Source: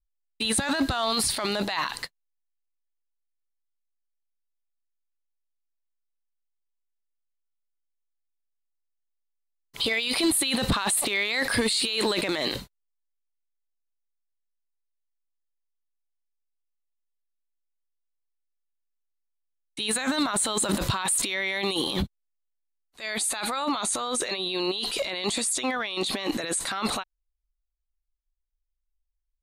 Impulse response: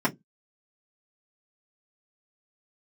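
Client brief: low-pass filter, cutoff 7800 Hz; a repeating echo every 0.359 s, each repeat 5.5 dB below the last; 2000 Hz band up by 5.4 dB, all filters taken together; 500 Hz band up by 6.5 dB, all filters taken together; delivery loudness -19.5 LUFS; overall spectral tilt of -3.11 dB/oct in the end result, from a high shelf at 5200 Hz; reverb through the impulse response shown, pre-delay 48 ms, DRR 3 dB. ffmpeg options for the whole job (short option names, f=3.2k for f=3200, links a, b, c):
-filter_complex "[0:a]lowpass=7.8k,equalizer=f=500:t=o:g=8,equalizer=f=2k:t=o:g=5.5,highshelf=f=5.2k:g=4,aecho=1:1:359|718|1077|1436|1795|2154|2513:0.531|0.281|0.149|0.079|0.0419|0.0222|0.0118,asplit=2[a][b];[1:a]atrim=start_sample=2205,adelay=48[c];[b][c]afir=irnorm=-1:irlink=0,volume=-15.5dB[d];[a][d]amix=inputs=2:normalize=0,volume=1dB"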